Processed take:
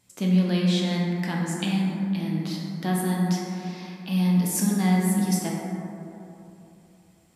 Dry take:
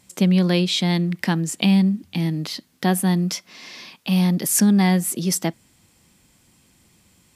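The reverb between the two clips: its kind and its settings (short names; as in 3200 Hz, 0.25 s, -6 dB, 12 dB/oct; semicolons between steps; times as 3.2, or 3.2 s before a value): plate-style reverb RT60 3.1 s, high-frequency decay 0.3×, DRR -3.5 dB; gain -10 dB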